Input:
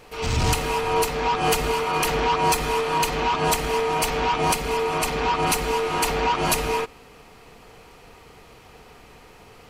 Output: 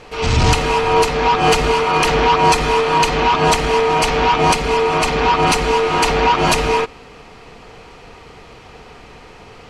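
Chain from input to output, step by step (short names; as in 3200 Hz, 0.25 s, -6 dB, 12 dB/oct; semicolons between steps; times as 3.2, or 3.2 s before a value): LPF 6300 Hz 12 dB/oct; gain +8 dB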